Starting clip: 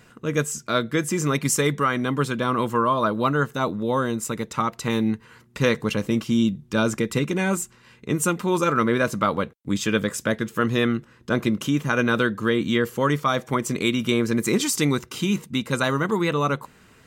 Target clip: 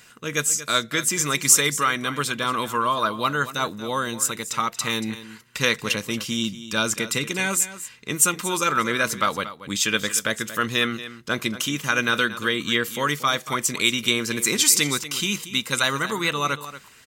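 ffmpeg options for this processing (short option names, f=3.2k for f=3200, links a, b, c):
-filter_complex "[0:a]asplit=2[a][b];[b]aecho=0:1:232:0.2[c];[a][c]amix=inputs=2:normalize=0,atempo=1,tiltshelf=f=1.3k:g=-8.5,volume=1dB"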